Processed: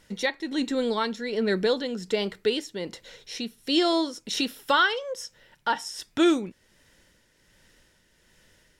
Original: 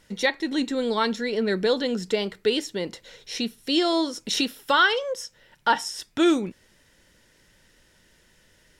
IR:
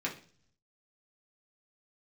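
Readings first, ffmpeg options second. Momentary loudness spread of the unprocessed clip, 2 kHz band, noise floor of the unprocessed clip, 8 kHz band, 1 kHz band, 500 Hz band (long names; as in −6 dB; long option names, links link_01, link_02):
11 LU, −3.0 dB, −61 dBFS, −3.5 dB, −2.5 dB, −1.5 dB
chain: -af "tremolo=f=1.3:d=0.46"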